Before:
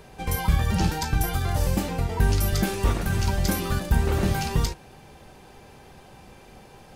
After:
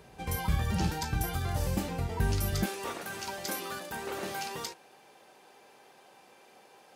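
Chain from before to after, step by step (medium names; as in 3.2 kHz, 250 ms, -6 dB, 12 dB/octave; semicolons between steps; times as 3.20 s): high-pass 52 Hz 12 dB/octave, from 2.66 s 400 Hz; trim -6 dB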